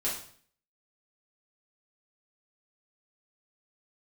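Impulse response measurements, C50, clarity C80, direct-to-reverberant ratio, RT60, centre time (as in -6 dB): 5.0 dB, 9.0 dB, -7.5 dB, 0.55 s, 37 ms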